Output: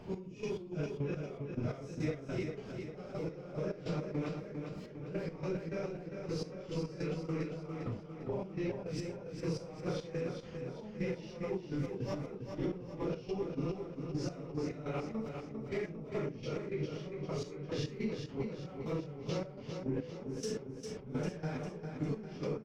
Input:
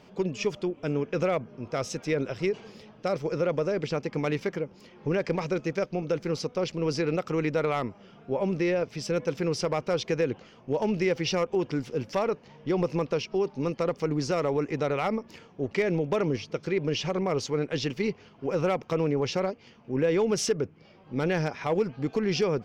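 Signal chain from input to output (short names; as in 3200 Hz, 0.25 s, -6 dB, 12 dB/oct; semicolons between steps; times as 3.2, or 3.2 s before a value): phase scrambler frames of 0.2 s; in parallel at -8 dB: soft clip -26.5 dBFS, distortion -11 dB; on the sum: compressor 10:1, threshold -35 dBFS, peak gain reduction 18 dB; low shelf 330 Hz +5 dB; step gate "x..x.x.x..." 105 bpm -12 dB; low shelf 140 Hz +7.5 dB; on a send: feedback echo 0.401 s, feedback 53%, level -6 dB; on the sum: mismatched tape noise reduction decoder only; gain -2 dB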